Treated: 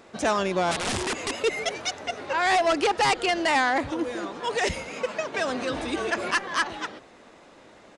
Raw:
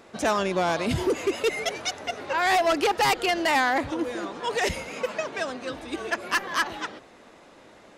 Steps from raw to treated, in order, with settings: 0.71–1.37 s: integer overflow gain 22 dB; resampled via 22.05 kHz; 5.34–6.31 s: level flattener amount 50%

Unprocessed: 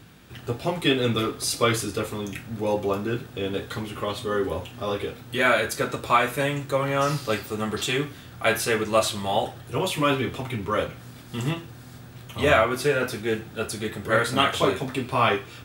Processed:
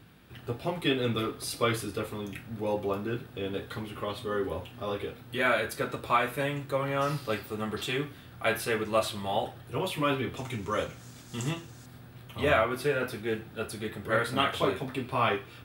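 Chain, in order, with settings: peaking EQ 6.7 kHz -8 dB 0.81 oct, from 10.37 s +9.5 dB, from 11.86 s -8.5 dB; trim -5.5 dB

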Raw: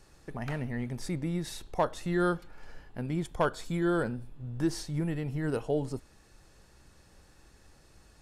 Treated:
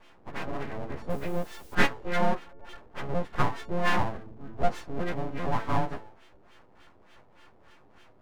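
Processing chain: partials quantised in pitch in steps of 4 st; de-hum 108.8 Hz, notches 7; LFO low-pass sine 3.4 Hz 410–1600 Hz; 1.10–1.75 s: word length cut 10-bit, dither triangular; full-wave rectifier; trim +3 dB

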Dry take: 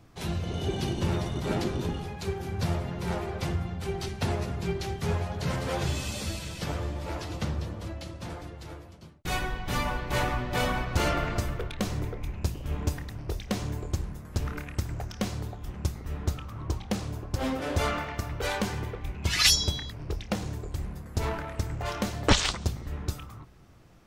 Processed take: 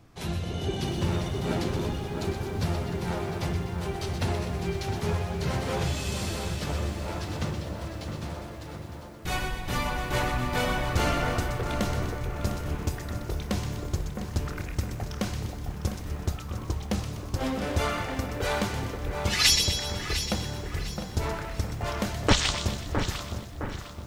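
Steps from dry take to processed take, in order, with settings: two-band feedback delay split 1.9 kHz, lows 662 ms, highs 124 ms, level -7 dB; bit-crushed delay 703 ms, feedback 35%, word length 8-bit, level -11 dB

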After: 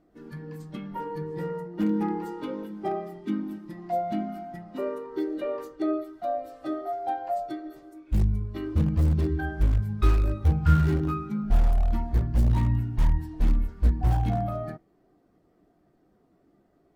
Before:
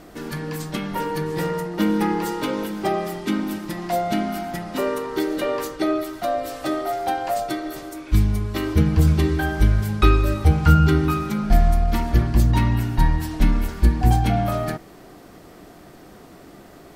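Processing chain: in parallel at -5.5 dB: integer overflow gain 12 dB; on the sum: spectral contrast expander 1.5:1; trim -7 dB

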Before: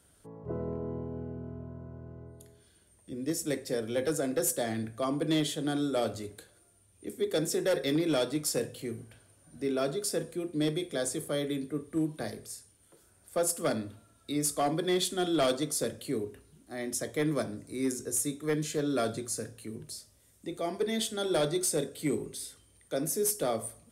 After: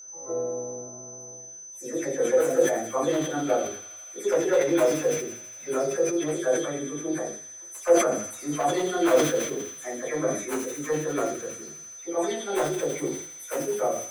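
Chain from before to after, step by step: delay that grows with frequency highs early, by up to 363 ms; integer overflow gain 19 dB; bass shelf 110 Hz -5 dB; simulated room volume 94 m³, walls mixed, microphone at 2.1 m; time stretch by phase-locked vocoder 0.59×; three-band isolator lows -16 dB, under 390 Hz, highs -17 dB, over 2 kHz; whistle 6.1 kHz -42 dBFS; on a send: feedback echo behind a high-pass 82 ms, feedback 83%, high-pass 2.6 kHz, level -6 dB; on the sum: decay stretcher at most 76 dB/s

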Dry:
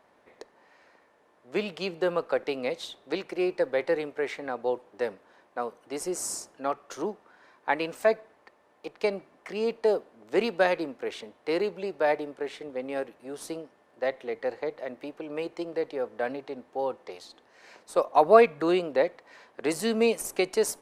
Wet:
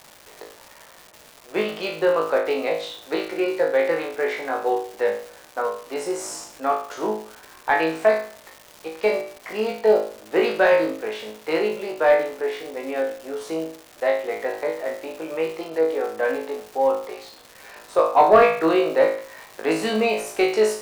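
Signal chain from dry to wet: flutter echo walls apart 3.2 m, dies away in 0.47 s; overdrive pedal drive 13 dB, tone 1.7 kHz, clips at -2.5 dBFS; crackle 480 per s -33 dBFS

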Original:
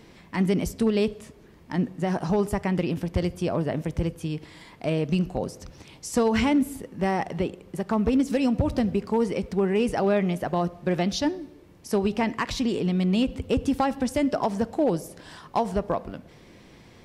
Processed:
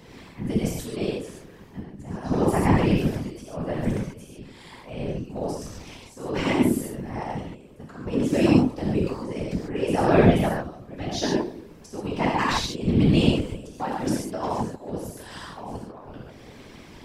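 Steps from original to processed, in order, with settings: slow attack 552 ms; gated-style reverb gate 170 ms flat, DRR -5 dB; whisper effect

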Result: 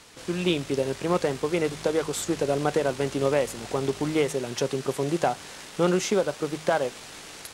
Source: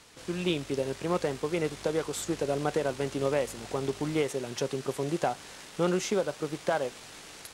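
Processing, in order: de-hum 52.21 Hz, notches 3; trim +4.5 dB

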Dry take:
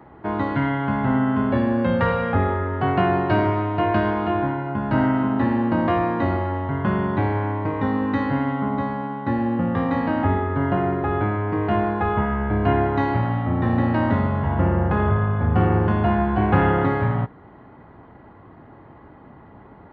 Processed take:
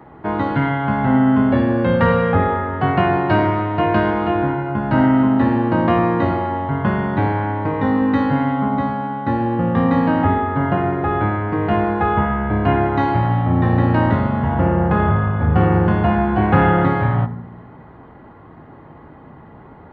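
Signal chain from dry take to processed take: on a send: reverberation RT60 0.95 s, pre-delay 3 ms, DRR 11 dB; on the sum: trim +3.5 dB

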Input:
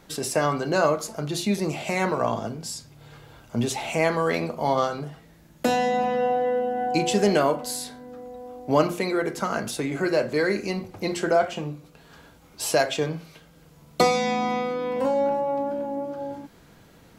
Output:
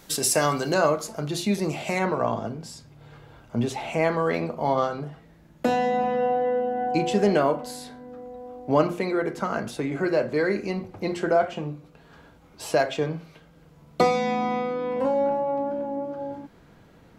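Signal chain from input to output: treble shelf 3.8 kHz +10 dB, from 0.74 s -2 dB, from 1.99 s -11.5 dB

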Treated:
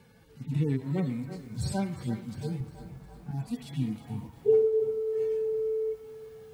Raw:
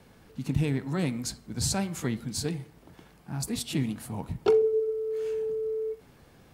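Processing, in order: harmonic-percussive separation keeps harmonic; 2.60–3.31 s: tilt EQ -3 dB/octave; band-passed feedback delay 335 ms, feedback 77%, band-pass 1 kHz, level -12 dB; bit-crushed delay 356 ms, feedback 55%, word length 9-bit, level -14.5 dB

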